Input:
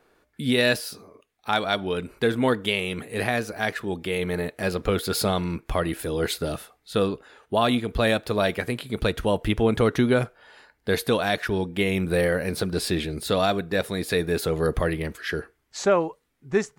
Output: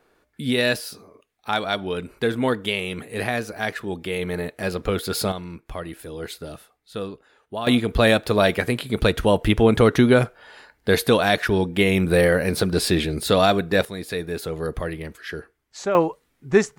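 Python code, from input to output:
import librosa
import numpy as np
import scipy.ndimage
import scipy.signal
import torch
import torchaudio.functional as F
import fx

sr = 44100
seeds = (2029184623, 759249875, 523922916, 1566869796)

y = fx.gain(x, sr, db=fx.steps((0.0, 0.0), (5.32, -7.5), (7.67, 5.0), (13.85, -4.0), (15.95, 6.0)))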